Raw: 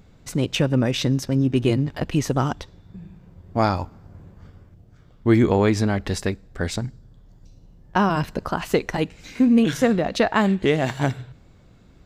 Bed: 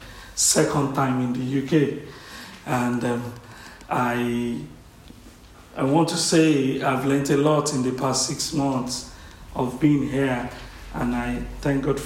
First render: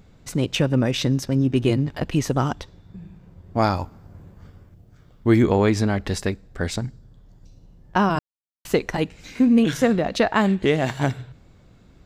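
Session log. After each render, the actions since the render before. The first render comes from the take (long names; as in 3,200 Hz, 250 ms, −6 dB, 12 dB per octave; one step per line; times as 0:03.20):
0:03.62–0:05.42: high-shelf EQ 11,000 Hz +8 dB
0:08.19–0:08.65: silence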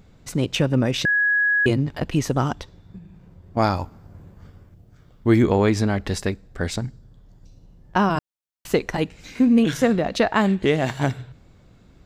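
0:01.05–0:01.66: beep over 1,670 Hz −16 dBFS
0:02.98–0:03.57: downward compressor 2 to 1, threshold −42 dBFS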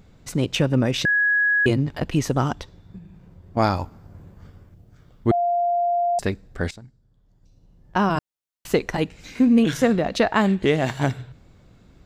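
0:05.31–0:06.19: beep over 697 Hz −18 dBFS
0:06.71–0:08.13: fade in quadratic, from −16.5 dB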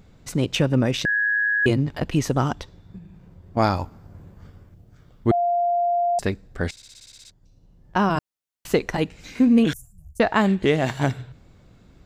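0:00.96–0:01.63: amplitude modulation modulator 110 Hz, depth 35%
0:06.71: stutter in place 0.06 s, 10 plays
0:09.73–0:10.20: inverse Chebyshev band-stop filter 220–4,100 Hz, stop band 50 dB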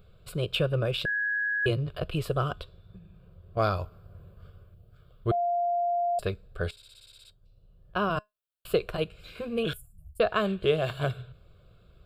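phaser with its sweep stopped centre 1,300 Hz, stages 8
tuned comb filter 210 Hz, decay 0.17 s, harmonics all, mix 30%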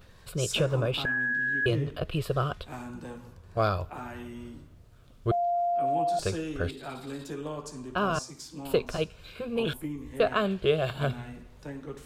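mix in bed −17.5 dB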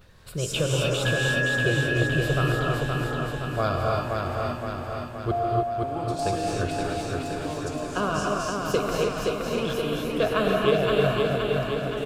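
repeating echo 520 ms, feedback 60%, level −3.5 dB
reverb whose tail is shaped and stops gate 330 ms rising, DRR −1 dB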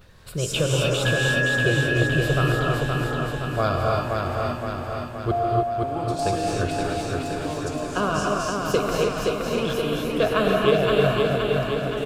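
level +2.5 dB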